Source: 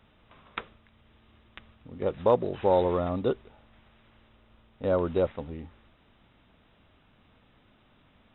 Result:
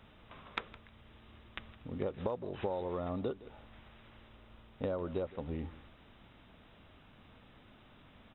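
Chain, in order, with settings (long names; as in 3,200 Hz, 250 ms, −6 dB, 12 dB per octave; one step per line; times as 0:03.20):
downward compressor 16 to 1, threshold −35 dBFS, peak gain reduction 19.5 dB
on a send: single-tap delay 163 ms −18.5 dB
on the sum: level +2.5 dB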